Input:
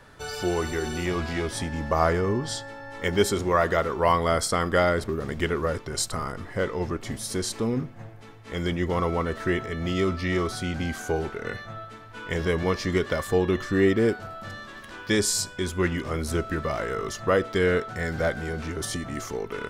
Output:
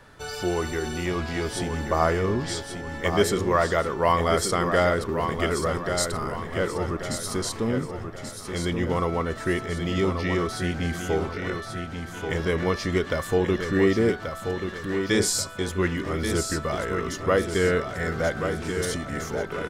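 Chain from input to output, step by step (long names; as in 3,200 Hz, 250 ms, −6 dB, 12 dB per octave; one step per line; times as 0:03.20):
repeating echo 1,133 ms, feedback 42%, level −7 dB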